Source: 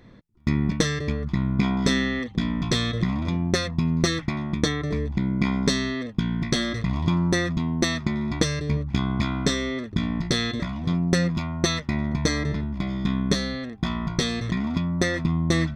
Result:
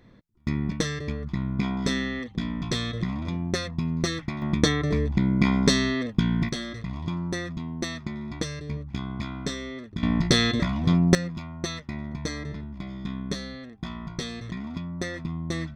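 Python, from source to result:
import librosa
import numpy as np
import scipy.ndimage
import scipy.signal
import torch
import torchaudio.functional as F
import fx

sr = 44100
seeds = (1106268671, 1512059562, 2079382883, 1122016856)

y = fx.gain(x, sr, db=fx.steps((0.0, -4.5), (4.42, 2.0), (6.49, -8.0), (10.03, 3.5), (11.15, -8.5)))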